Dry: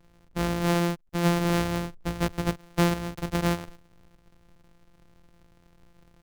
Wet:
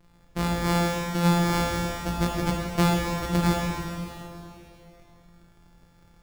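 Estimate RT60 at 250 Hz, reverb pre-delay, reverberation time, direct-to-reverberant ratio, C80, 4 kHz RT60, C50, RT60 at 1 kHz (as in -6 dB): 2.9 s, 6 ms, 3.0 s, -1.0 dB, 1.5 dB, 2.8 s, 0.5 dB, 3.0 s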